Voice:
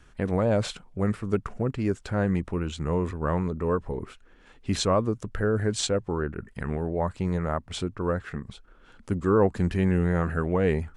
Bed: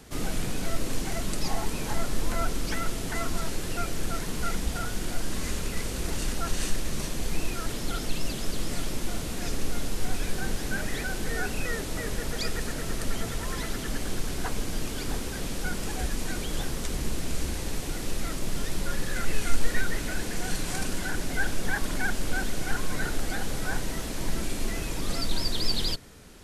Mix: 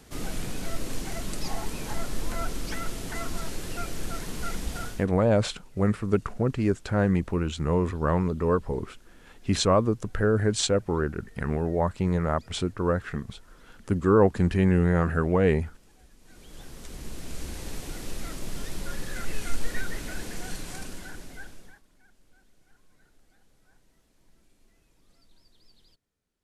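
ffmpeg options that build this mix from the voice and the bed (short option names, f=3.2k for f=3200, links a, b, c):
-filter_complex "[0:a]adelay=4800,volume=2dB[a];[1:a]volume=19dB,afade=t=out:st=4.84:d=0.22:silence=0.0668344,afade=t=in:st=16.21:d=1.48:silence=0.0794328,afade=t=out:st=20.29:d=1.53:silence=0.0334965[b];[a][b]amix=inputs=2:normalize=0"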